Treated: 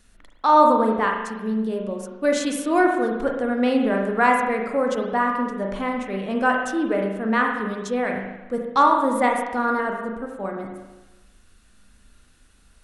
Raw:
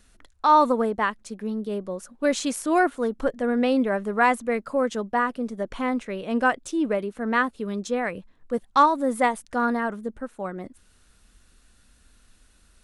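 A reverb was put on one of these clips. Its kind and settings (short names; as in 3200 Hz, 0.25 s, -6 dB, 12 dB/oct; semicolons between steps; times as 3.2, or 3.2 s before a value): spring tank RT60 1.1 s, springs 36/41 ms, chirp 80 ms, DRR 1 dB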